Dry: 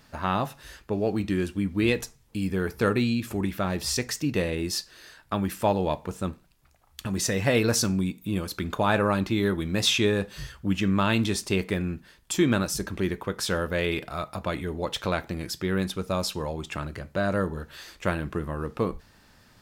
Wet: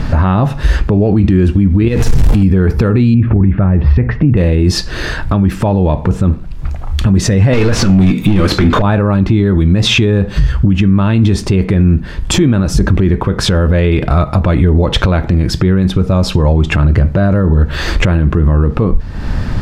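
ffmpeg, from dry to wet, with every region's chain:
-filter_complex "[0:a]asettb=1/sr,asplit=3[a][b][c];[a]atrim=end=1.884[d];[b]atrim=start=1.88:end=2.43,asetpts=PTS-STARTPTS,afade=t=in:d=0.004:c=qsin,afade=t=out:st=0.546:d=0.004:c=qsin,aeval=exprs='val(0)+0.5*0.0282*sgn(val(0))':c=same,highshelf=f=9.5k:g=7.5,acompressor=threshold=-30dB:ratio=4:attack=3.2:release=140:knee=1:detection=peak[e];[c]atrim=start=2.426[f];[d][e]acrossfade=d=0.004:c1=hsin:c2=qsin[g];[g][f]acrossfade=d=0.004:c1=qsin:c2=hsin,asettb=1/sr,asplit=3[h][i][j];[h]atrim=end=3.144[k];[i]atrim=start=3.14:end=4.37,asetpts=PTS-STARTPTS,afade=t=in:d=0.004:c=qsin,afade=t=out:st=1.226:d=0.004:c=qsin,lowpass=f=2.3k:w=0.5412,lowpass=f=2.3k:w=1.3066,equalizer=f=95:t=o:w=2:g=5.5[l];[j]atrim=start=4.366[m];[k][l]acrossfade=d=0.004:c1=hsin:c2=qsin[n];[n][m]acrossfade=d=0.004:c1=qsin:c2=hsin,asettb=1/sr,asplit=3[o][p][q];[o]atrim=end=7.534[r];[p]atrim=start=7.53:end=8.82,asetpts=PTS-STARTPTS,afade=t=in:d=0.004:c=qsin,afade=t=out:st=1.286:d=0.004:c=qsin,equalizer=f=840:t=o:w=1.1:g=-7,asplit=2[s][t];[t]highpass=f=720:p=1,volume=29dB,asoftclip=type=tanh:threshold=-12dB[u];[s][u]amix=inputs=2:normalize=0,lowpass=f=4.4k:p=1,volume=-6dB,asplit=2[v][w];[w]adelay=20,volume=-12dB[x];[v][x]amix=inputs=2:normalize=0,atrim=end_sample=56889[y];[q]atrim=start=8.816[z];[r][y]acrossfade=d=0.004:c1=hsin:c2=qsin[aa];[aa][z]acrossfade=d=0.004:c1=qsin:c2=hsin,aemphasis=mode=reproduction:type=riaa,acompressor=threshold=-36dB:ratio=3,alimiter=level_in=31.5dB:limit=-1dB:release=50:level=0:latency=1,volume=-1dB"

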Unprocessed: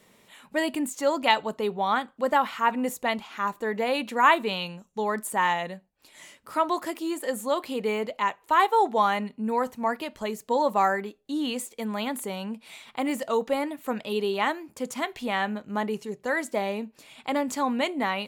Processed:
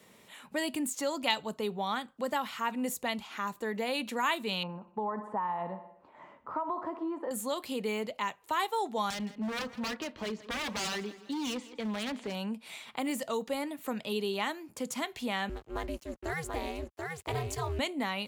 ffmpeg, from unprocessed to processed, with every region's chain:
-filter_complex "[0:a]asettb=1/sr,asplit=3[a][b][c];[a]atrim=end=4.634[d];[b]atrim=start=4.63:end=7.31,asetpts=PTS-STARTPTS,afade=t=in:d=0.004:c=qsin,afade=t=out:st=2.676:d=0.004:c=qsin,aecho=1:1:61|122|183|244|305|366:0.168|0.0974|0.0565|0.0328|0.019|0.011,atrim=end_sample=118188,acompressor=threshold=-26dB:ratio=5:attack=3.2:release=140:knee=1:detection=peak,lowpass=f=1k:t=q:w=2.6[e];[c]atrim=start=7.306[f];[d][e]acrossfade=d=0.004:c1=hsin:c2=qsin[g];[g][f]acrossfade=d=0.004:c1=qsin:c2=hsin,asettb=1/sr,asplit=3[h][i][j];[h]atrim=end=9.104[k];[i]atrim=start=9.1:end=12.35,asetpts=PTS-STARTPTS,afade=t=in:d=0.004:c=qsin,afade=t=out:st=3.246:d=0.004:c=qsin,lowpass=f=4.7k:w=0.5412,lowpass=f=4.7k:w=1.3066,aeval=exprs='0.0473*(abs(mod(val(0)/0.0473+3,4)-2)-1)':c=same,aecho=1:1:165|330|495:0.112|0.046|0.0189,atrim=end_sample=143325[l];[j]atrim=start=12.346[m];[k][l]acrossfade=d=0.004:c1=hsin:c2=qsin[n];[n][m]acrossfade=d=0.004:c1=qsin:c2=hsin,asettb=1/sr,asplit=3[o][p][q];[o]atrim=end=15.494[r];[p]atrim=start=15.49:end=17.79,asetpts=PTS-STARTPTS,afade=t=in:d=0.004:c=qsin,afade=t=out:st=2.296:d=0.004:c=qsin,aeval=exprs='sgn(val(0))*max(abs(val(0))-0.00376,0)':c=same,aeval=exprs='val(0)*sin(2*PI*160*n/s)':c=same,aecho=1:1:734:0.531,atrim=end_sample=101430[s];[q]atrim=start=17.786[t];[r][s]acrossfade=d=0.004:c1=hsin:c2=qsin[u];[u][t]acrossfade=d=0.004:c1=qsin:c2=hsin,highpass=47,acrossover=split=190|3000[v][w][x];[w]acompressor=threshold=-38dB:ratio=2[y];[v][y][x]amix=inputs=3:normalize=0"

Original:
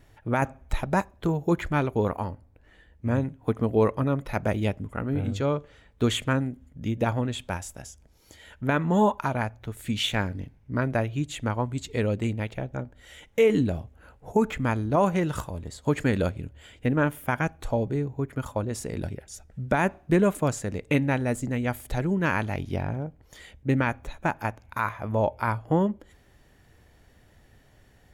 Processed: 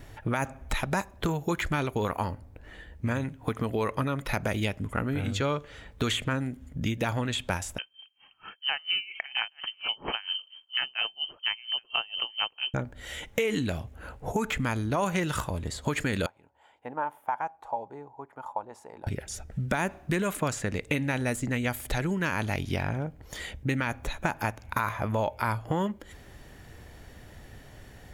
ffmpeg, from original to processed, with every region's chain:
-filter_complex "[0:a]asettb=1/sr,asplit=3[a][b][c];[a]atrim=end=7.784[d];[b]atrim=start=7.78:end=12.74,asetpts=PTS-STARTPTS,afade=t=in:d=0.004:c=qsin,afade=t=out:st=4.956:d=0.004:c=qsin,aecho=1:1:825:0.0841,atrim=end_sample=218736,lowpass=f=2.7k:t=q:w=0.5098,lowpass=f=2.7k:t=q:w=0.6013,lowpass=f=2.7k:t=q:w=0.9,lowpass=f=2.7k:t=q:w=2.563,afreqshift=-3200,aeval=exprs='val(0)*pow(10,-28*(0.5-0.5*cos(2*PI*4.3*n/s))/20)':c=same[e];[c]atrim=start=12.736[f];[d][e]acrossfade=d=0.004:c1=hsin:c2=qsin[g];[g][f]acrossfade=d=0.004:c1=qsin:c2=hsin,asettb=1/sr,asplit=3[h][i][j];[h]atrim=end=16.264[k];[i]atrim=start=16.26:end=19.07,asetpts=PTS-STARTPTS,afade=t=in:d=0.004:c=qsin,afade=t=out:st=2.806:d=0.004:c=qsin,bandpass=f=870:t=q:w=7.2,aemphasis=mode=production:type=50fm[l];[j]atrim=start=19.066[m];[k][l]acrossfade=d=0.004:c1=hsin:c2=qsin[n];[n][m]acrossfade=d=0.004:c1=qsin:c2=hsin,alimiter=limit=-16.5dB:level=0:latency=1:release=42,acrossover=split=1200|3500[o][p][q];[o]acompressor=threshold=-38dB:ratio=4[r];[p]acompressor=threshold=-41dB:ratio=4[s];[q]acompressor=threshold=-47dB:ratio=4[t];[r][s][t]amix=inputs=3:normalize=0,volume=9dB"

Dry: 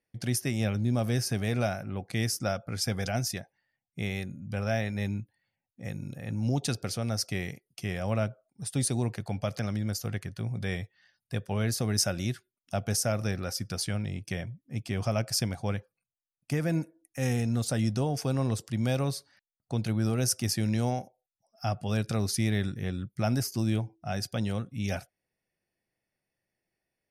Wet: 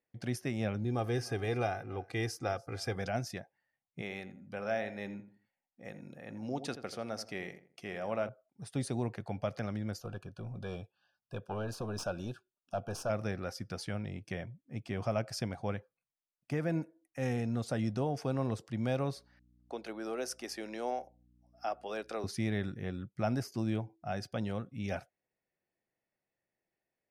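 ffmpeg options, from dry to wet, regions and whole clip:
-filter_complex "[0:a]asettb=1/sr,asplit=3[a][b][c];[a]atrim=end=0.844[d];[b]atrim=start=0.84:end=2.96,asetpts=PTS-STARTPTS,afade=t=in:d=0.004:c=qsin,afade=t=out:st=2.116:d=0.004:c=qsin,aecho=1:1:2.5:0.64,atrim=end_sample=93492,aecho=1:1:291:0.0708,atrim=end_sample=93492[e];[c]atrim=start=2.956[f];[d][e]acrossfade=d=0.004:c1=hsin:c2=qsin[g];[g][f]acrossfade=d=0.004:c1=qsin:c2=hsin,asettb=1/sr,asplit=3[h][i][j];[h]atrim=end=4.014[k];[i]atrim=start=4.01:end=8.29,asetpts=PTS-STARTPTS,afade=t=in:d=0.004:c=qsin,afade=t=out:st=4.276:d=0.004:c=qsin,equalizer=f=98:t=o:w=1.6:g=-13.5,asplit=2[l][m];[m]adelay=84,lowpass=f=1.7k:p=1,volume=-11dB,asplit=2[n][o];[o]adelay=84,lowpass=f=1.7k:p=1,volume=0.32,asplit=2[p][q];[q]adelay=84,lowpass=f=1.7k:p=1,volume=0.32[r];[l][n][p][r]amix=inputs=4:normalize=0,atrim=end_sample=188748[s];[j]atrim=start=8.286[t];[k][s]acrossfade=d=0.004:c1=hsin:c2=qsin[u];[u][t]acrossfade=d=0.004:c1=qsin:c2=hsin,asettb=1/sr,asplit=3[v][w][x];[v]atrim=end=10.004[y];[w]atrim=start=10:end=13.1,asetpts=PTS-STARTPTS,afade=t=in:d=0.004:c=qsin,afade=t=out:st=3.096:d=0.004:c=qsin,equalizer=f=820:w=0.99:g=3.5,aeval=exprs='(tanh(15.8*val(0)+0.45)-tanh(0.45))/15.8':c=same,asuperstop=centerf=2000:order=12:qfactor=3.1[z];[x]atrim=start=13.096[aa];[y][z]acrossfade=d=0.004:c1=hsin:c2=qsin[ab];[ab][aa]acrossfade=d=0.004:c1=qsin:c2=hsin,asettb=1/sr,asplit=3[ac][ad][ae];[ac]atrim=end=19.164[af];[ad]atrim=start=19.16:end=22.24,asetpts=PTS-STARTPTS,afade=t=in:d=0.004:c=qsin,afade=t=out:st=3.076:d=0.004:c=qsin,highpass=f=320:w=0.5412,highpass=f=320:w=1.3066,aeval=exprs='val(0)+0.00126*(sin(2*PI*60*n/s)+sin(2*PI*2*60*n/s)/2+sin(2*PI*3*60*n/s)/3+sin(2*PI*4*60*n/s)/4+sin(2*PI*5*60*n/s)/5)':c=same[ag];[ae]atrim=start=22.236[ah];[af][ag]acrossfade=d=0.004:c1=hsin:c2=qsin[ai];[ai][ah]acrossfade=d=0.004:c1=qsin:c2=hsin,lowpass=f=1.4k:p=1,lowshelf=f=220:g=-9.5"

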